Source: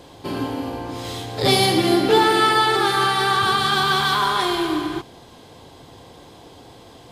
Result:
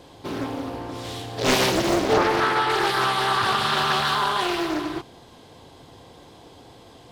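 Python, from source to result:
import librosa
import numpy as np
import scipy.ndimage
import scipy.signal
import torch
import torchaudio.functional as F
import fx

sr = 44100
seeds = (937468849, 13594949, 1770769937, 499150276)

y = fx.high_shelf(x, sr, hz=2800.0, db=-8.5, at=(2.13, 2.7))
y = fx.doppler_dist(y, sr, depth_ms=0.94)
y = F.gain(torch.from_numpy(y), -3.0).numpy()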